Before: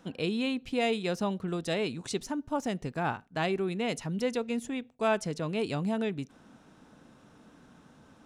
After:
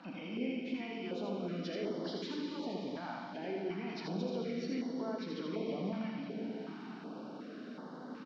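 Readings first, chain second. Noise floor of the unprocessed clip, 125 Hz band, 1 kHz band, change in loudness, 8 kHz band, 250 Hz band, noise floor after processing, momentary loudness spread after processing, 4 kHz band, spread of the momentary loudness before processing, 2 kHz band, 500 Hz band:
−59 dBFS, −8.5 dB, −10.0 dB, −8.0 dB, below −15 dB, −5.0 dB, −48 dBFS, 9 LU, −8.5 dB, 5 LU, −10.5 dB, −8.0 dB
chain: hearing-aid frequency compression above 1,800 Hz 1.5 to 1
high-pass filter 220 Hz 24 dB per octave
parametric band 2,200 Hz −4 dB 1.4 octaves
downward compressor, threshold −44 dBFS, peak gain reduction 20 dB
brickwall limiter −41 dBFS, peak gain reduction 10 dB
high-frequency loss of the air 84 metres
on a send: single-tap delay 81 ms −3.5 dB
on the sum: dense smooth reverb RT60 4.4 s, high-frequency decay 1×, DRR 0.5 dB
notch on a step sequencer 2.7 Hz 420–2,500 Hz
level +9 dB

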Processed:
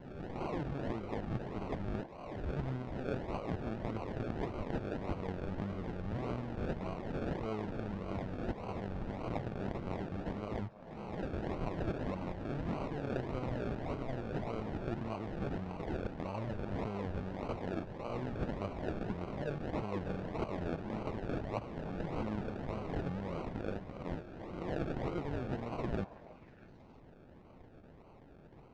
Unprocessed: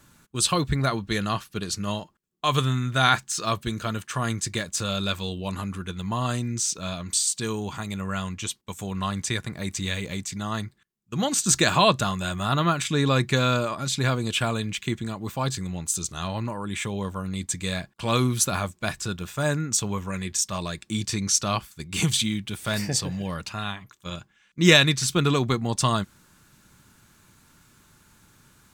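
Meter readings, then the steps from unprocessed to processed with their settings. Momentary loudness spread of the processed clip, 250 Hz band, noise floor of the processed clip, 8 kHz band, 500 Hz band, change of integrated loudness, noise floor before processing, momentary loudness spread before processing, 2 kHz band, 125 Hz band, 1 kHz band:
7 LU, −10.5 dB, −57 dBFS, below −40 dB, −9.5 dB, −14.5 dB, −62 dBFS, 11 LU, −20.0 dB, −12.5 dB, −14.5 dB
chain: peak hold with a rise ahead of every peak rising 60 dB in 0.70 s
low-shelf EQ 430 Hz −8 dB
reversed playback
downward compressor 12 to 1, threshold −34 dBFS, peak gain reduction 24 dB
reversed playback
sample-and-hold swept by an LFO 35×, swing 60% 1.7 Hz
head-to-tape spacing loss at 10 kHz 32 dB
on a send: echo through a band-pass that steps 320 ms, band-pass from 740 Hz, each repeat 1.4 octaves, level −11 dB
on the sum: level +1.5 dB

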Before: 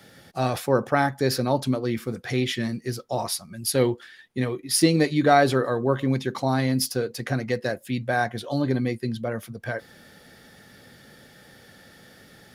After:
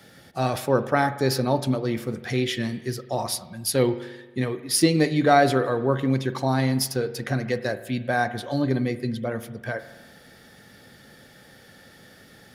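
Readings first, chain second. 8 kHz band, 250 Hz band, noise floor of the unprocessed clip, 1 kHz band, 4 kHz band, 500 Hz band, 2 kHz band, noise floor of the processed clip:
0.0 dB, 0.0 dB, −52 dBFS, +0.5 dB, 0.0 dB, +0.5 dB, 0.0 dB, −51 dBFS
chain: spring reverb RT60 1.2 s, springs 45 ms, chirp 70 ms, DRR 12.5 dB

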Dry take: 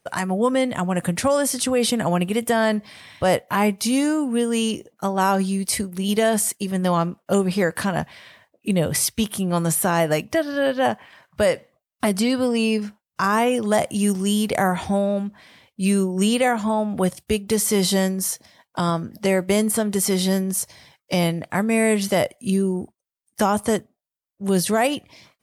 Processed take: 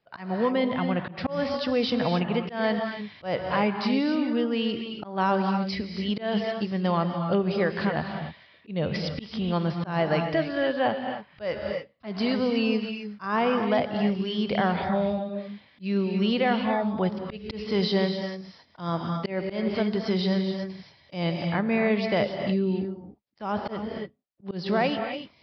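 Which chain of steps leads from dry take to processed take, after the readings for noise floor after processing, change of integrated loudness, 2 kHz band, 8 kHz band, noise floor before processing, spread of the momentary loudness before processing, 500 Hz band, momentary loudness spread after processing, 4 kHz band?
−59 dBFS, −5.5 dB, −5.0 dB, below −35 dB, −84 dBFS, 7 LU, −5.0 dB, 11 LU, −5.0 dB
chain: downsampling to 11,025 Hz
reverb whose tail is shaped and stops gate 310 ms rising, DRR 5.5 dB
volume swells 170 ms
level −5 dB

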